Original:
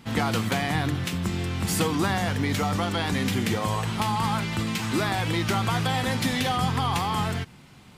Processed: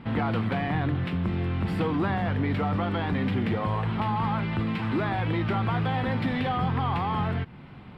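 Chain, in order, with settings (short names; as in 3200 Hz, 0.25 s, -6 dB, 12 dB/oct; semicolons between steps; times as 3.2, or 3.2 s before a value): notch 6300 Hz, Q 6.6; in parallel at +1 dB: compressor, threshold -37 dBFS, peak gain reduction 16.5 dB; on the sum: soft clip -17.5 dBFS, distortion -17 dB; air absorption 450 m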